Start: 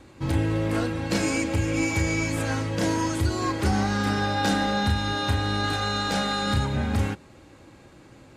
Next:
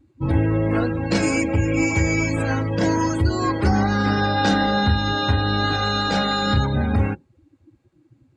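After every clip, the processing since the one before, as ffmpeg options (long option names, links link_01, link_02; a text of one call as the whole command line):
ffmpeg -i in.wav -af "afftdn=noise_reduction=26:noise_floor=-35,volume=5dB" out.wav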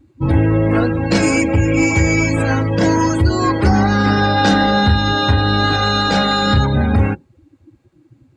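ffmpeg -i in.wav -af "acontrast=55" out.wav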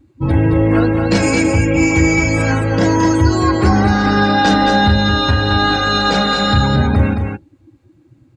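ffmpeg -i in.wav -af "aecho=1:1:220:0.531" out.wav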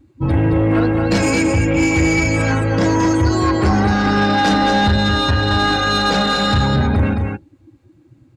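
ffmpeg -i in.wav -af "asoftclip=type=tanh:threshold=-8.5dB" out.wav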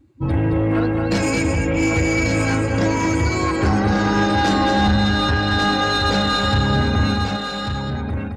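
ffmpeg -i in.wav -af "aecho=1:1:1142:0.531,volume=-3.5dB" out.wav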